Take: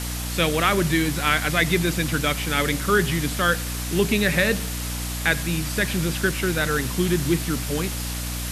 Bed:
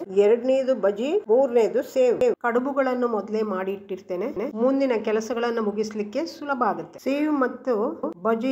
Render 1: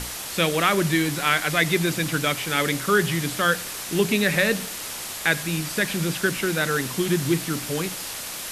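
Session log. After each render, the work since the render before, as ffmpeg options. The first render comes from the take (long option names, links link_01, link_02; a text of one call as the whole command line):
ffmpeg -i in.wav -af "bandreject=frequency=60:width_type=h:width=6,bandreject=frequency=120:width_type=h:width=6,bandreject=frequency=180:width_type=h:width=6,bandreject=frequency=240:width_type=h:width=6,bandreject=frequency=300:width_type=h:width=6" out.wav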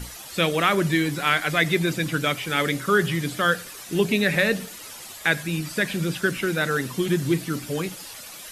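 ffmpeg -i in.wav -af "afftdn=noise_reduction=11:noise_floor=-34" out.wav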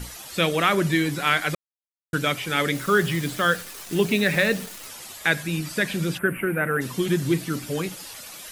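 ffmpeg -i in.wav -filter_complex "[0:a]asettb=1/sr,asplit=3[link_01][link_02][link_03];[link_01]atrim=end=2.754[link_04];[link_02]atrim=start=2.75:end=4.88,asetpts=PTS-STARTPTS,afade=type=in:duration=0.004:curve=qsin,afade=type=out:start_time=2.126:duration=0.004:curve=qsin,acrusher=bits=7:dc=4:mix=0:aa=0.000001[link_05];[link_03]atrim=start=4.876[link_06];[link_04][link_05]acrossfade=duration=0.004:curve1=hsin:curve2=qsin[link_07];[link_07][link_06]acrossfade=duration=0.004:curve1=qsin:curve2=hsin,asplit=3[link_08][link_09][link_10];[link_08]afade=type=out:start_time=6.17:duration=0.02[link_11];[link_09]asuperstop=centerf=5100:order=8:qfactor=0.74,afade=type=in:start_time=6.17:duration=0.02,afade=type=out:start_time=6.8:duration=0.02[link_12];[link_10]afade=type=in:start_time=6.8:duration=0.02[link_13];[link_11][link_12][link_13]amix=inputs=3:normalize=0,asplit=3[link_14][link_15][link_16];[link_14]atrim=end=1.55,asetpts=PTS-STARTPTS,afade=type=out:start_time=1.546:duration=0.004:curve=hsin[link_17];[link_15]atrim=start=1.55:end=2.13,asetpts=PTS-STARTPTS,volume=0[link_18];[link_16]atrim=start=2.13,asetpts=PTS-STARTPTS,afade=type=in:duration=0.004:curve=hsin[link_19];[link_17][link_18][link_19]concat=n=3:v=0:a=1" out.wav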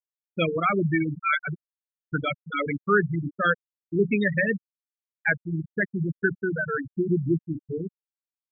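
ffmpeg -i in.wav -af "afftfilt=real='re*gte(hypot(re,im),0.282)':imag='im*gte(hypot(re,im),0.282)':win_size=1024:overlap=0.75,adynamicequalizer=threshold=0.0141:dfrequency=540:dqfactor=1:tfrequency=540:tqfactor=1:attack=5:release=100:ratio=0.375:range=2.5:mode=cutabove:tftype=bell" out.wav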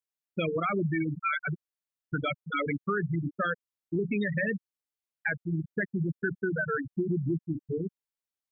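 ffmpeg -i in.wav -af "alimiter=limit=-17dB:level=0:latency=1:release=21,acompressor=threshold=-27dB:ratio=2.5" out.wav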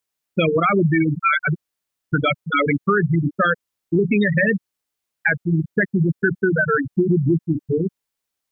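ffmpeg -i in.wav -af "volume=11.5dB" out.wav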